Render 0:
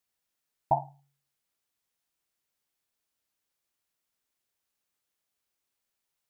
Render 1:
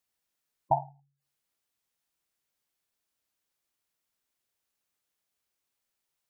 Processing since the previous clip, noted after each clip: spectral gate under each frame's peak -20 dB strong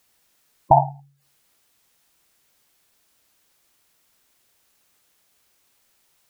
maximiser +18.5 dB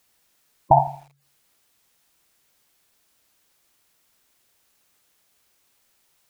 lo-fi delay 82 ms, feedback 35%, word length 7-bit, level -14.5 dB; gain -1 dB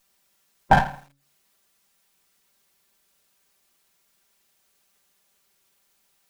minimum comb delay 5.1 ms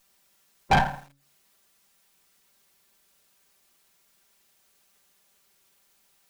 soft clip -16 dBFS, distortion -7 dB; gain +2 dB

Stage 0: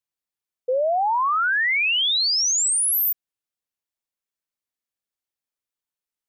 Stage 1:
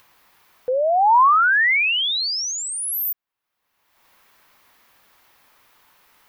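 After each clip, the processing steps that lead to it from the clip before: ten-band EQ 1000 Hz +9 dB, 2000 Hz +4 dB, 8000 Hz -9 dB; in parallel at -1 dB: upward compressor, threshold -18 dBFS; on the sum: gain -7 dB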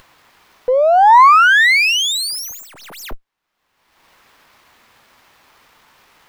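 running maximum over 5 samples; gain +7 dB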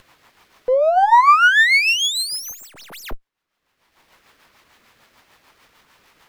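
rotary speaker horn 6.7 Hz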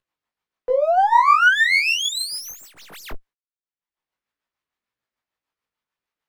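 chorus 1.8 Hz, delay 16.5 ms, depth 5.3 ms; gate -47 dBFS, range -30 dB

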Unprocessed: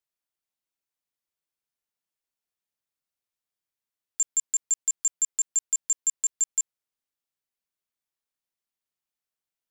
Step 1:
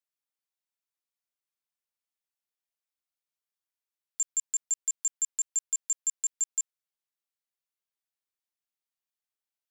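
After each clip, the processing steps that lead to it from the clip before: low shelf 350 Hz -11.5 dB; gain -4 dB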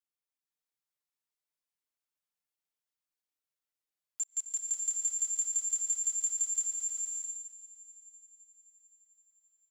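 comb 6.6 ms, depth 72%; multi-head echo 0.26 s, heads first and third, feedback 51%, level -23.5 dB; bloom reverb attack 0.61 s, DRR -1.5 dB; gain -7 dB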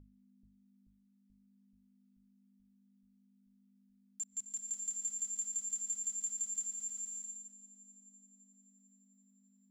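hum 50 Hz, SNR 11 dB; notches 50/100/150 Hz; dark delay 0.433 s, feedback 72%, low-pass 440 Hz, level -6 dB; gain -6.5 dB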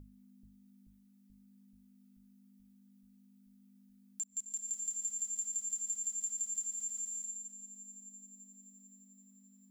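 high shelf 9300 Hz +9 dB; compressor 1.5:1, threshold -56 dBFS, peak gain reduction 9 dB; gain +6 dB

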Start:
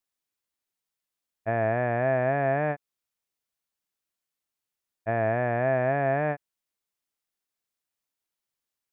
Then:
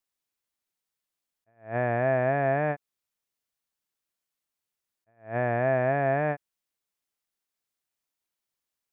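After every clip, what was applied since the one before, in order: attack slew limiter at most 190 dB/s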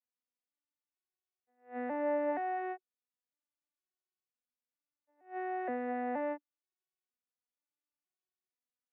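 arpeggiated vocoder minor triad, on B3, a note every 0.473 s; low shelf 460 Hz -6 dB; gain -6.5 dB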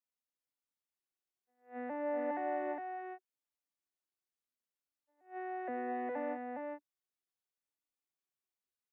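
echo 0.411 s -3 dB; gain -4 dB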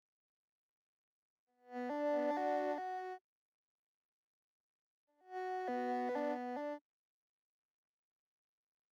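median filter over 15 samples

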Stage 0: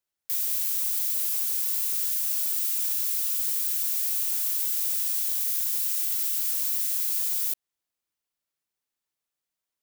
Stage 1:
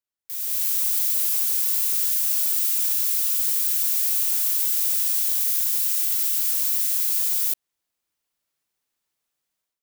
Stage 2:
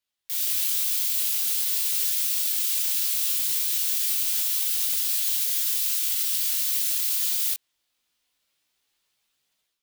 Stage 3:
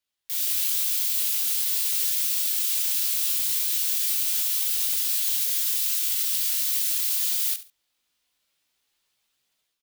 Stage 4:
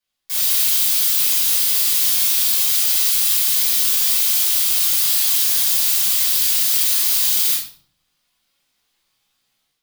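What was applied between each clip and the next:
AGC gain up to 13.5 dB; gain -7 dB
bell 3400 Hz +8 dB 1.4 oct; limiter -18 dBFS, peak gain reduction 8.5 dB; chorus voices 2, 0.21 Hz, delay 19 ms, depth 4.4 ms; gain +6.5 dB
feedback echo 70 ms, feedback 22%, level -14.5 dB
in parallel at -7 dB: bit-crush 5-bit; on the sum: reverb RT60 0.55 s, pre-delay 5 ms, DRR -5.5 dB; gain -2.5 dB

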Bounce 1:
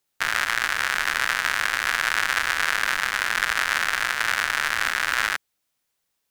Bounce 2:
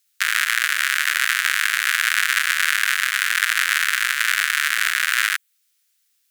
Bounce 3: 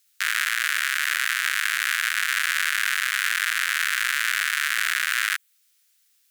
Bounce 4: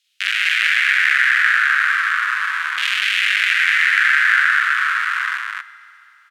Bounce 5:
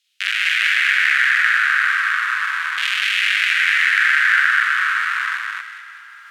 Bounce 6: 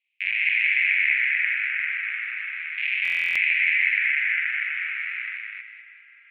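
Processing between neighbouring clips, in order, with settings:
dynamic EQ 5200 Hz, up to -6 dB, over -44 dBFS, Q 1.4; inverse Chebyshev high-pass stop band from 660 Hz, stop band 40 dB; high shelf 2200 Hz +9.5 dB; gain +1 dB
limiter -12.5 dBFS, peak gain reduction 11 dB; gain +2.5 dB
LFO band-pass saw down 0.36 Hz 850–3100 Hz; loudspeakers at several distances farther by 15 m -1 dB, 85 m -1 dB; reverb RT60 3.2 s, pre-delay 4 ms, DRR 15 dB; gain +8 dB
reverse; upward compressor, threshold -32 dBFS; reverse; thin delay 0.201 s, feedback 50%, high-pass 1800 Hz, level -8 dB; gain -1 dB
spectral gate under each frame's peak -30 dB strong; Butterworth band-pass 2300 Hz, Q 4; stuck buffer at 3.03, samples 1024, times 13

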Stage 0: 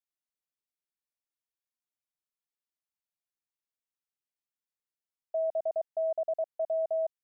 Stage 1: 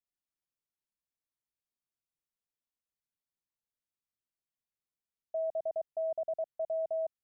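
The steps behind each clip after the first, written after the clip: low shelf 350 Hz +10.5 dB; gain -6 dB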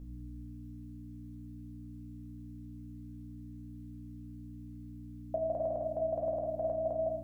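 limiter -36.5 dBFS, peak gain reduction 7.5 dB; hum 60 Hz, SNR 13 dB; reverb RT60 1.2 s, pre-delay 4 ms, DRR -0.5 dB; gain +13.5 dB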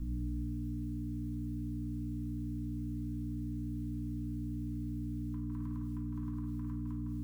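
Chebyshev band-stop 320–1000 Hz, order 5; gain +9 dB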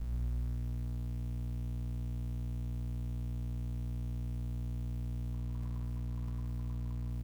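fixed phaser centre 690 Hz, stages 4; in parallel at -9.5 dB: Schmitt trigger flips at -47.5 dBFS; on the sum: echo 0.117 s -9.5 dB

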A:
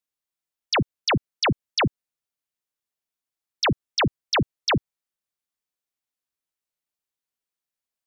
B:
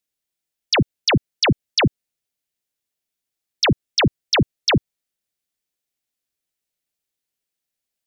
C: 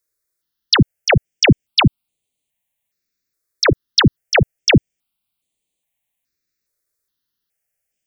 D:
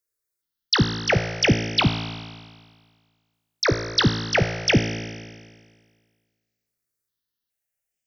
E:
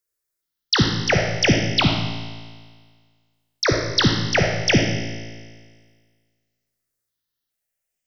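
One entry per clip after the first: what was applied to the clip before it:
bell 1100 Hz -8 dB 0.94 oct; gain +6 dB
step phaser 2.4 Hz 800–5300 Hz; gain +7.5 dB
resonator 56 Hz, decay 1.7 s, harmonics all, mix 80%; gain +5 dB
digital reverb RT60 0.82 s, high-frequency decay 0.85×, pre-delay 15 ms, DRR 4 dB; gain +1 dB

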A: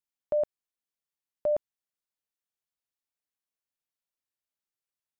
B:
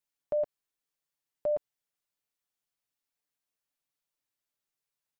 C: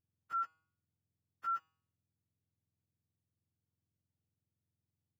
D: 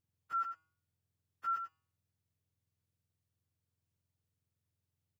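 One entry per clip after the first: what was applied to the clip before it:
comb 6.9 ms, depth 49%; limiter -26 dBFS, peak gain reduction 7.5 dB; gain +2 dB
spectrum mirrored in octaves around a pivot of 900 Hz; resonator 160 Hz, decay 0.56 s, harmonics all, mix 60%; gain +1 dB
echo 91 ms -8 dB; gain +1 dB

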